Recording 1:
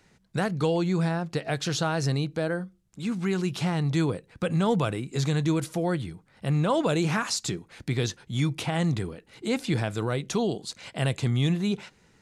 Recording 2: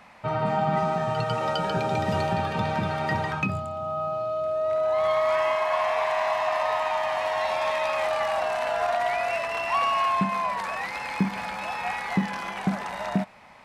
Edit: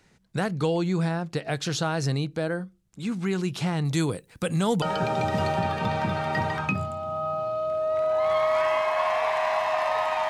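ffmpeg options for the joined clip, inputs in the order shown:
-filter_complex "[0:a]asettb=1/sr,asplit=3[a][b][c];[a]atrim=end=3.854[d];[b]atrim=start=3.85:end=4.82,asetpts=PTS-STARTPTS,afade=t=in:d=0.004:c=qsin,afade=t=out:st=0.966:d=0.004:c=qsin,aemphasis=mode=production:type=50fm[e];[c]atrim=start=4.816[f];[d][e]acrossfade=d=0.004:c1=hsin:c2=qsin[g];[g][f]acrossfade=d=0.004:c1=qsin:c2=hsin,apad=whole_dur=10.29,atrim=end=10.29,atrim=end=4.822[h];[1:a]atrim=start=1.558:end=7.03[i];[h][i]acrossfade=d=0.004:c1=hsin:c2=hsin"

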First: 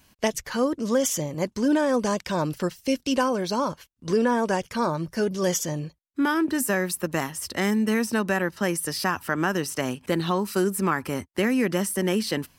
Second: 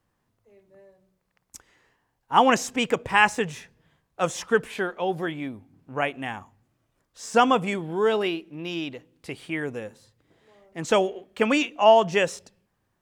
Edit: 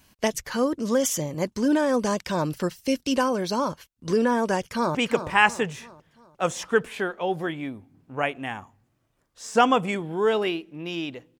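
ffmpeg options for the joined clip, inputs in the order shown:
-filter_complex "[0:a]apad=whole_dur=11.39,atrim=end=11.39,atrim=end=4.952[a];[1:a]atrim=start=2.738:end=9.18[b];[a][b]acrossfade=d=0.004:c1=hsin:c2=hsin,asplit=2[c][d];[d]afade=t=in:st=4.59:d=0.01,afade=t=out:st=4.95:d=0.01,aecho=0:1:350|700|1050|1400|1750:0.334965|0.150734|0.0678305|0.0305237|0.0137357[e];[c][e]amix=inputs=2:normalize=0"

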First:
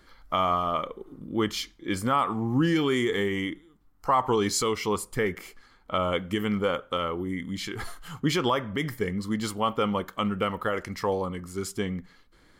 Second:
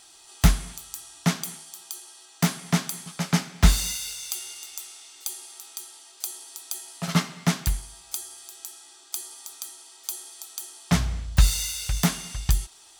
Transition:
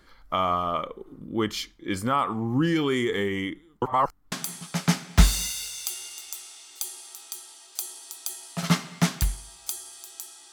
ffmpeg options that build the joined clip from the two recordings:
-filter_complex "[0:a]apad=whole_dur=10.52,atrim=end=10.52,asplit=2[a][b];[a]atrim=end=3.822[c];[b]atrim=start=3.818:end=4.322,asetpts=PTS-STARTPTS,areverse[d];[1:a]atrim=start=2.768:end=8.97[e];[c][d]acrossfade=d=0.004:c1=hsin:c2=hsin[f];[f][e]acrossfade=d=0.004:c1=hsin:c2=hsin"

